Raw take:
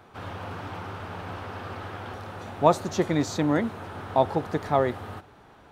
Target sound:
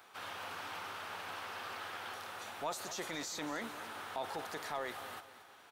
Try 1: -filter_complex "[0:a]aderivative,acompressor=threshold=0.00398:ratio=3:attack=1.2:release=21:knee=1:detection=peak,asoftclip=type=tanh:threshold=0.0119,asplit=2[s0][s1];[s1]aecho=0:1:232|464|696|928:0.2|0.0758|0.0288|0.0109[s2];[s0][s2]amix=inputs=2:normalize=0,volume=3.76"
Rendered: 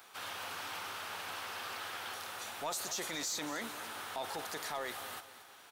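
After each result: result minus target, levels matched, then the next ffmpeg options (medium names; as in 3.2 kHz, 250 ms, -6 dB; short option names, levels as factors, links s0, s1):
saturation: distortion +18 dB; 8 kHz band +4.5 dB
-filter_complex "[0:a]aderivative,acompressor=threshold=0.00398:ratio=3:attack=1.2:release=21:knee=1:detection=peak,asoftclip=type=tanh:threshold=0.0335,asplit=2[s0][s1];[s1]aecho=0:1:232|464|696|928:0.2|0.0758|0.0288|0.0109[s2];[s0][s2]amix=inputs=2:normalize=0,volume=3.76"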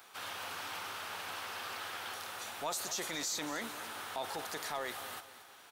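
8 kHz band +4.5 dB
-filter_complex "[0:a]aderivative,acompressor=threshold=0.00398:ratio=3:attack=1.2:release=21:knee=1:detection=peak,highshelf=f=3500:g=-9,asoftclip=type=tanh:threshold=0.0335,asplit=2[s0][s1];[s1]aecho=0:1:232|464|696|928:0.2|0.0758|0.0288|0.0109[s2];[s0][s2]amix=inputs=2:normalize=0,volume=3.76"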